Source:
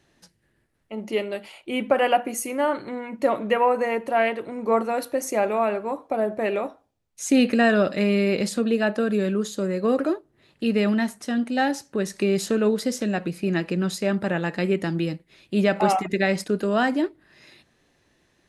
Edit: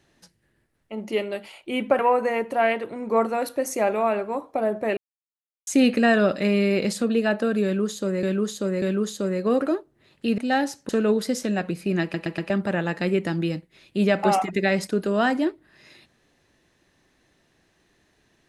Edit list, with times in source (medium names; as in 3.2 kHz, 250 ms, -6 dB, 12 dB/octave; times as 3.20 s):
1.99–3.55 s: delete
6.53–7.23 s: mute
9.20–9.79 s: loop, 3 plays
10.76–11.45 s: delete
11.96–12.46 s: delete
13.59 s: stutter in place 0.12 s, 4 plays